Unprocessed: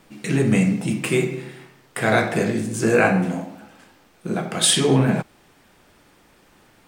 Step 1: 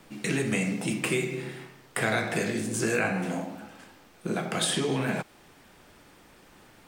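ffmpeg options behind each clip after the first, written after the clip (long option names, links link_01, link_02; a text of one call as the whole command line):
ffmpeg -i in.wav -filter_complex "[0:a]acrossover=split=280|1600[link_01][link_02][link_03];[link_01]acompressor=threshold=-34dB:ratio=4[link_04];[link_02]acompressor=threshold=-30dB:ratio=4[link_05];[link_03]acompressor=threshold=-29dB:ratio=4[link_06];[link_04][link_05][link_06]amix=inputs=3:normalize=0" out.wav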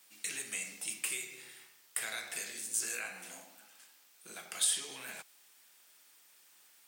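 ffmpeg -i in.wav -af "aderivative" out.wav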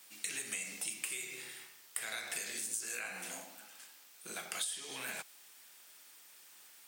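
ffmpeg -i in.wav -af "acompressor=threshold=-40dB:ratio=10,volume=4.5dB" out.wav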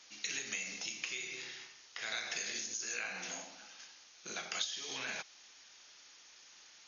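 ffmpeg -i in.wav -af "aemphasis=mode=production:type=cd,volume=1dB" -ar 48000 -c:a ac3 -b:a 48k out.ac3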